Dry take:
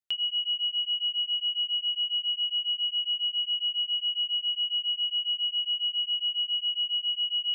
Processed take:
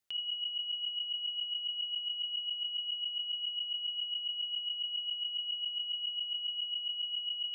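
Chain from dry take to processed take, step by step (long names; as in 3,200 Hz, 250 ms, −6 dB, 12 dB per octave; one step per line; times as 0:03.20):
compressor whose output falls as the input rises −37 dBFS, ratio −1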